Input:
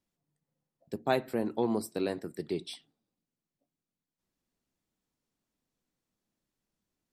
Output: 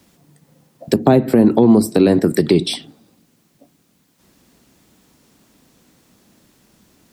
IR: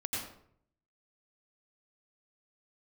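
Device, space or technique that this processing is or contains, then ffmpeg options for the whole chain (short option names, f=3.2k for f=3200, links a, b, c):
mastering chain: -filter_complex "[0:a]highpass=46,equalizer=f=250:t=o:w=1.1:g=2.5,acrossover=split=270|650[a][b][c];[a]acompressor=threshold=-32dB:ratio=4[d];[b]acompressor=threshold=-39dB:ratio=4[e];[c]acompressor=threshold=-51dB:ratio=4[f];[d][e][f]amix=inputs=3:normalize=0,acompressor=threshold=-40dB:ratio=2.5,alimiter=level_in=31.5dB:limit=-1dB:release=50:level=0:latency=1,volume=-1dB"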